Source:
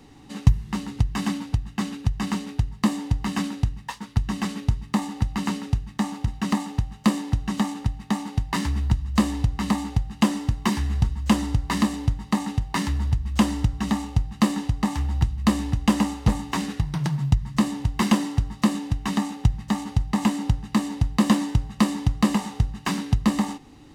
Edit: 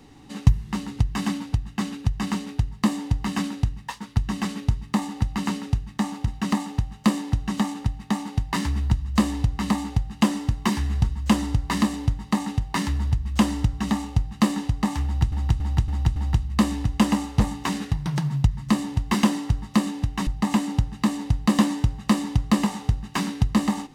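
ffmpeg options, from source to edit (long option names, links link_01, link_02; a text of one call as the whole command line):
ffmpeg -i in.wav -filter_complex "[0:a]asplit=6[link_01][link_02][link_03][link_04][link_05][link_06];[link_01]atrim=end=15.322[link_07];[link_02]atrim=start=15.038:end=15.322[link_08];[link_03]atrim=start=15.038:end=15.322[link_09];[link_04]atrim=start=15.038:end=15.322[link_10];[link_05]atrim=start=15.038:end=19.152[link_11];[link_06]atrim=start=19.978[link_12];[link_07][link_08]acrossfade=duration=0.004:curve1=hsin:curve2=hsin[link_13];[link_13][link_09]acrossfade=duration=0.004:curve1=hsin:curve2=hsin[link_14];[link_14][link_10]acrossfade=duration=0.004:curve1=hsin:curve2=hsin[link_15];[link_15][link_11]acrossfade=duration=0.004:curve1=hsin:curve2=hsin[link_16];[link_16][link_12]acrossfade=duration=0.004:curve1=hsin:curve2=hsin" out.wav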